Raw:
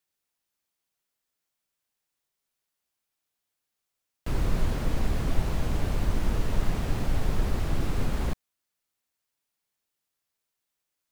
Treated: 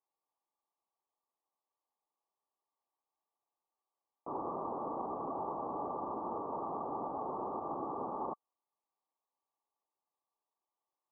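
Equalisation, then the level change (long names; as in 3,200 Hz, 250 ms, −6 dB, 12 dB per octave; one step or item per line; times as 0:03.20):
high-pass filter 660 Hz 12 dB per octave
Chebyshev low-pass with heavy ripple 1,200 Hz, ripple 6 dB
+8.0 dB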